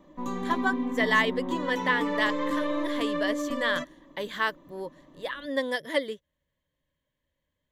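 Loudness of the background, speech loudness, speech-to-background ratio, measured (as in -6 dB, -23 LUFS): -31.0 LUFS, -29.5 LUFS, 1.5 dB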